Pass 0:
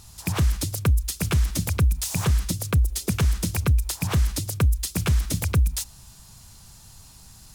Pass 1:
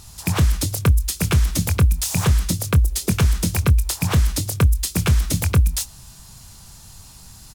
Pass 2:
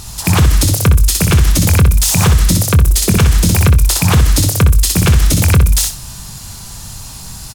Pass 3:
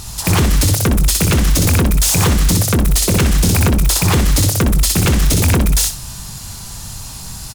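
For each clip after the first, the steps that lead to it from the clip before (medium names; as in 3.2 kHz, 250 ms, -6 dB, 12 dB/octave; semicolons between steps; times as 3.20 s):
doubling 23 ms -12 dB; trim +4.5 dB
feedback delay 62 ms, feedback 21%, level -6 dB; loudness maximiser +13.5 dB; trim -1 dB
wavefolder -7.5 dBFS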